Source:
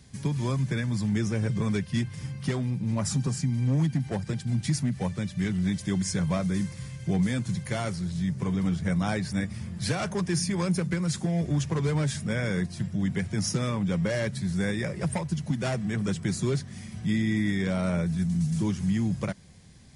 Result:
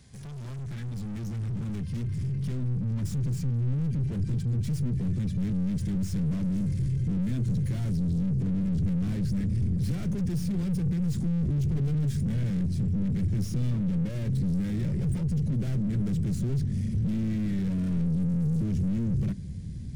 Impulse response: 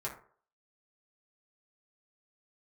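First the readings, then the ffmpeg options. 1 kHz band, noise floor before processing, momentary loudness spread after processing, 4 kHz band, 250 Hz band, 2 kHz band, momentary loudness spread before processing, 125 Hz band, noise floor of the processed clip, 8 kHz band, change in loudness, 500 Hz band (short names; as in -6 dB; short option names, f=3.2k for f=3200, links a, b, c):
under -10 dB, -43 dBFS, 5 LU, under -10 dB, -1.0 dB, under -15 dB, 4 LU, +1.5 dB, -36 dBFS, -12.5 dB, -0.5 dB, -10.0 dB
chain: -af "aeval=exprs='(tanh(112*val(0)+0.2)-tanh(0.2))/112':c=same,asubboost=boost=12:cutoff=240,volume=-1.5dB"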